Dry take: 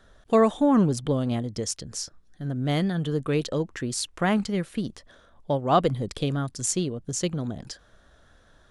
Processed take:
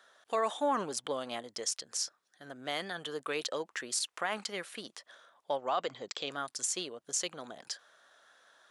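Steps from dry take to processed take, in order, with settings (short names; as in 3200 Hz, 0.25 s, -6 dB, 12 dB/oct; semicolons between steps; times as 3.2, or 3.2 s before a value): HPF 750 Hz 12 dB/oct; limiter -21.5 dBFS, peak gain reduction 11 dB; 5.56–6.32 brick-wall FIR low-pass 7800 Hz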